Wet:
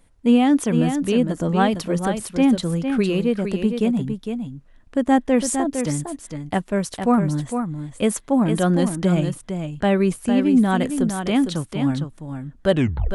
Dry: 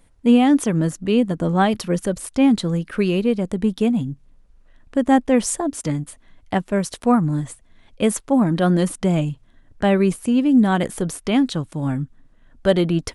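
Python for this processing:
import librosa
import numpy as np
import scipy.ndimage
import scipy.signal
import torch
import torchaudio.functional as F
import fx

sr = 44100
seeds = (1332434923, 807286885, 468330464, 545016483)

y = fx.tape_stop_end(x, sr, length_s=0.43)
y = y + 10.0 ** (-7.0 / 20.0) * np.pad(y, (int(457 * sr / 1000.0), 0))[:len(y)]
y = F.gain(torch.from_numpy(y), -1.5).numpy()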